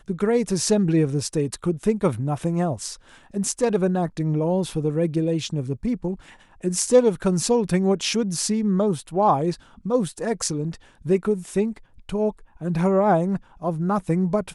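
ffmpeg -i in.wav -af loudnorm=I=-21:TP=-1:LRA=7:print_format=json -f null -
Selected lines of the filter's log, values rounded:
"input_i" : "-23.2",
"input_tp" : "-5.1",
"input_lra" : "2.5",
"input_thresh" : "-33.4",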